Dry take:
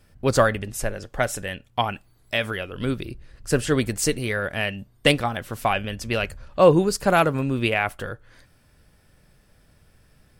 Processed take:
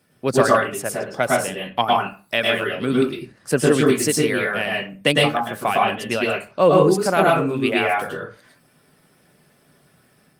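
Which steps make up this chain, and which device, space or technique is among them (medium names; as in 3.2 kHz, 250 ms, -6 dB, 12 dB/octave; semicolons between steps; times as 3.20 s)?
0.96–1.65 s: band-stop 1.8 kHz, Q 8; reverb removal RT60 0.51 s; far-field microphone of a smart speaker (reverberation RT60 0.40 s, pre-delay 102 ms, DRR -2.5 dB; high-pass 140 Hz 24 dB/octave; level rider gain up to 3.5 dB; Opus 32 kbps 48 kHz)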